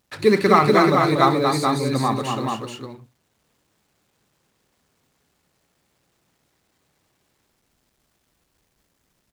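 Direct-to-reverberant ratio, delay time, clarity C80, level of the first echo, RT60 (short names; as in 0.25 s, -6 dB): none, 65 ms, none, -18.0 dB, none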